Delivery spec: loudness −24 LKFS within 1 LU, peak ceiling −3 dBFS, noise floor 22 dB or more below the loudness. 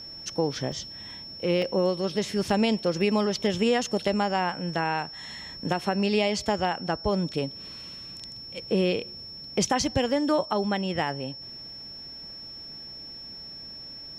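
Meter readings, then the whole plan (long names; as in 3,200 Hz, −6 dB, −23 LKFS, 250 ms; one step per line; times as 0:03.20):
number of dropouts 2; longest dropout 1.8 ms; interfering tone 5,400 Hz; level of the tone −39 dBFS; integrated loudness −27.0 LKFS; sample peak −11.5 dBFS; target loudness −24.0 LKFS
→ repair the gap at 0:00.72/0:01.62, 1.8 ms
notch filter 5,400 Hz, Q 30
level +3 dB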